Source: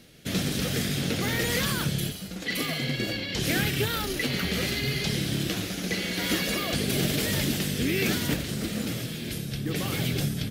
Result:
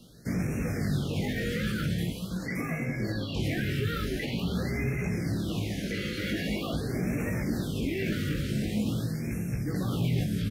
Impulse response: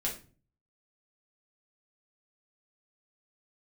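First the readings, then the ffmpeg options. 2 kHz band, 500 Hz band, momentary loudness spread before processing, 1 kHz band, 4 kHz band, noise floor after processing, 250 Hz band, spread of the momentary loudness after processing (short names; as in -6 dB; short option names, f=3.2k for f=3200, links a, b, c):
-6.0 dB, -3.0 dB, 6 LU, -5.5 dB, -10.5 dB, -36 dBFS, -0.5 dB, 3 LU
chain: -filter_complex "[0:a]acrossover=split=2900[a][b];[b]acompressor=threshold=-42dB:ratio=4:attack=1:release=60[c];[a][c]amix=inputs=2:normalize=0,asplit=2[d][e];[e]aecho=0:1:598:0.178[f];[d][f]amix=inputs=2:normalize=0,alimiter=limit=-22dB:level=0:latency=1:release=24,acrossover=split=250|1100[g][h][i];[g]acontrast=37[j];[j][h][i]amix=inputs=3:normalize=0,flanger=delay=17:depth=2.5:speed=0.41,afftfilt=real='re*(1-between(b*sr/1024,830*pow(3900/830,0.5+0.5*sin(2*PI*0.45*pts/sr))/1.41,830*pow(3900/830,0.5+0.5*sin(2*PI*0.45*pts/sr))*1.41))':imag='im*(1-between(b*sr/1024,830*pow(3900/830,0.5+0.5*sin(2*PI*0.45*pts/sr))/1.41,830*pow(3900/830,0.5+0.5*sin(2*PI*0.45*pts/sr))*1.41))':win_size=1024:overlap=0.75,volume=1dB"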